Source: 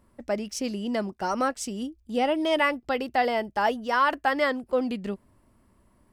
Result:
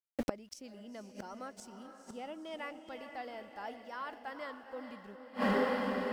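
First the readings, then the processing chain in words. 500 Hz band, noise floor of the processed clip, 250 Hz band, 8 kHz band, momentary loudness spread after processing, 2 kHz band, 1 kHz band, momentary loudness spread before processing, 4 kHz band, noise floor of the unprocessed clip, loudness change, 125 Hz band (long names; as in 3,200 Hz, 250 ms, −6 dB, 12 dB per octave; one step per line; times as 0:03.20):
−11.5 dB, −58 dBFS, −10.0 dB, −16.0 dB, 17 LU, −13.5 dB, −14.5 dB, 9 LU, −14.0 dB, −64 dBFS, −13.0 dB, can't be measured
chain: centre clipping without the shift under −47.5 dBFS
feedback delay with all-pass diffusion 459 ms, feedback 50%, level −8 dB
gate with flip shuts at −25 dBFS, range −27 dB
level +7 dB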